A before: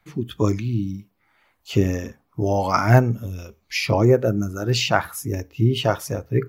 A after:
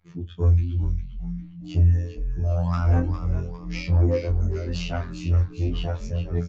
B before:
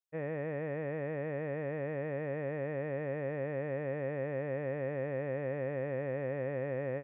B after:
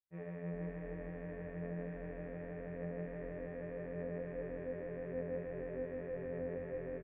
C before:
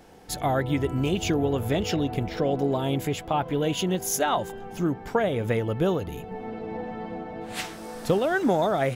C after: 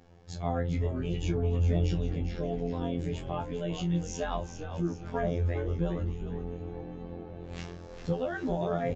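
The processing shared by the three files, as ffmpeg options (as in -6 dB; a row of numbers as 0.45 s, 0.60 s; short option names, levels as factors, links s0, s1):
-filter_complex "[0:a]equalizer=f=100:t=o:w=1.8:g=14.5,afftfilt=real='hypot(re,im)*cos(PI*b)':imag='0':win_size=2048:overlap=0.75,aresample=16000,asoftclip=type=tanh:threshold=0.355,aresample=44100,highshelf=f=5300:g=-4.5,flanger=delay=7.8:depth=4:regen=65:speed=0.85:shape=sinusoidal,asplit=2[s0][s1];[s1]adelay=25,volume=0.335[s2];[s0][s2]amix=inputs=2:normalize=0,asplit=2[s3][s4];[s4]asplit=5[s5][s6][s7][s8][s9];[s5]adelay=403,afreqshift=-130,volume=0.355[s10];[s6]adelay=806,afreqshift=-260,volume=0.16[s11];[s7]adelay=1209,afreqshift=-390,volume=0.0716[s12];[s8]adelay=1612,afreqshift=-520,volume=0.0324[s13];[s9]adelay=2015,afreqshift=-650,volume=0.0146[s14];[s10][s11][s12][s13][s14]amix=inputs=5:normalize=0[s15];[s3][s15]amix=inputs=2:normalize=0,volume=0.708"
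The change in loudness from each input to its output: -3.0 LU, -7.0 LU, -6.0 LU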